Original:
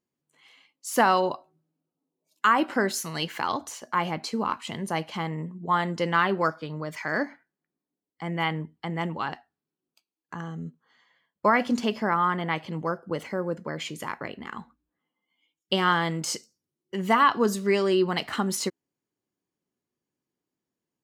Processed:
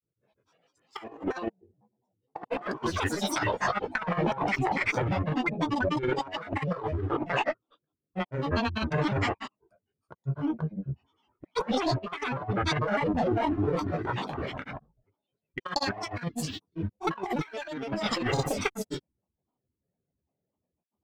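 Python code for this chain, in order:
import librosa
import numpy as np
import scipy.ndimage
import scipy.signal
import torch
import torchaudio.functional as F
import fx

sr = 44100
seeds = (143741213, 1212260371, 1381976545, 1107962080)

y = fx.wiener(x, sr, points=41)
y = fx.rev_gated(y, sr, seeds[0], gate_ms=160, shape='flat', drr_db=-5.0)
y = fx.cheby_harmonics(y, sr, harmonics=(8,), levels_db=(-31,), full_scale_db=-6.5)
y = fx.high_shelf(y, sr, hz=5400.0, db=-10.0)
y = y + 0.73 * np.pad(y, (int(1.7 * sr / 1000.0), 0))[:len(y)]
y = fx.granulator(y, sr, seeds[1], grain_ms=100.0, per_s=20.0, spray_ms=271.0, spread_st=12)
y = fx.over_compress(y, sr, threshold_db=-26.0, ratio=-0.5)
y = y * 10.0 ** (-2.5 / 20.0)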